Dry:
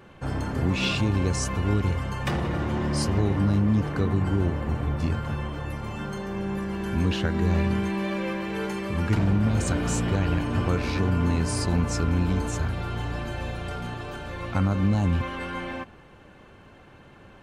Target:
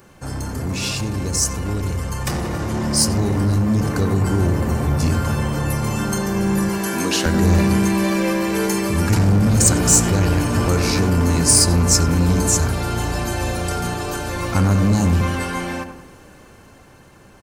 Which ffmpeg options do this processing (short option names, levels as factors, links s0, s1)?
-filter_complex "[0:a]asettb=1/sr,asplit=3[s0][s1][s2];[s0]atrim=end=6.694[s3];[s1]atrim=start=6.69:end=7.26,asetpts=PTS-STARTPTS,afade=t=in:d=0.004:c=qsin,afade=t=out:st=0.566:d=0.004:c=qsin,highpass=340[s4];[s2]atrim=start=7.256[s5];[s3][s4]acrossfade=d=0.004:c1=hsin:c2=qsin[s6];[s6][s5]acrossfade=d=0.004:c1=qsin:c2=hsin,asplit=2[s7][s8];[s8]adelay=91,lowpass=f=1500:p=1,volume=0.422,asplit=2[s9][s10];[s10]adelay=91,lowpass=f=1500:p=1,volume=0.52,asplit=2[s11][s12];[s12]adelay=91,lowpass=f=1500:p=1,volume=0.52,asplit=2[s13][s14];[s14]adelay=91,lowpass=f=1500:p=1,volume=0.52,asplit=2[s15][s16];[s16]adelay=91,lowpass=f=1500:p=1,volume=0.52,asplit=2[s17][s18];[s18]adelay=91,lowpass=f=1500:p=1,volume=0.52[s19];[s9][s11][s13][s15][s17][s19]amix=inputs=6:normalize=0[s20];[s7][s20]amix=inputs=2:normalize=0,asoftclip=type=tanh:threshold=0.119,aexciter=amount=3.5:drive=7.8:freq=4700,dynaudnorm=f=400:g=13:m=3.16,volume=1.12"